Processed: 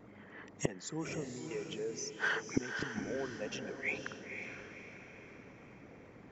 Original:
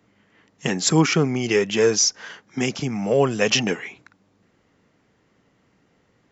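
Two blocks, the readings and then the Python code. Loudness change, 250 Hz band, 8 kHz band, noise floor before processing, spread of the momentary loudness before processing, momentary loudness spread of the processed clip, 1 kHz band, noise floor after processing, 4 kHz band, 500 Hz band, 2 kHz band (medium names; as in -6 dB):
-18.5 dB, -17.5 dB, no reading, -64 dBFS, 13 LU, 18 LU, -16.0 dB, -56 dBFS, -21.5 dB, -18.5 dB, -10.0 dB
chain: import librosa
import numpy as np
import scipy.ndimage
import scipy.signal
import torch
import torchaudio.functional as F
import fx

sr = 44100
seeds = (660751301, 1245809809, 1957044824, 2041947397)

p1 = fx.envelope_sharpen(x, sr, power=1.5)
p2 = fx.peak_eq(p1, sr, hz=800.0, db=5.0, octaves=1.7)
p3 = fx.notch(p2, sr, hz=2900.0, q=12.0)
p4 = fx.gate_flip(p3, sr, shuts_db=-19.0, range_db=-29)
p5 = 10.0 ** (-33.5 / 20.0) * np.tanh(p4 / 10.0 ** (-33.5 / 20.0))
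p6 = p4 + (p5 * librosa.db_to_amplitude(-5.0))
p7 = fx.wow_flutter(p6, sr, seeds[0], rate_hz=2.1, depth_cents=45.0)
p8 = p7 + fx.echo_diffused(p7, sr, ms=518, feedback_pct=45, wet_db=-6, dry=0)
y = p8 * librosa.db_to_amplitude(1.0)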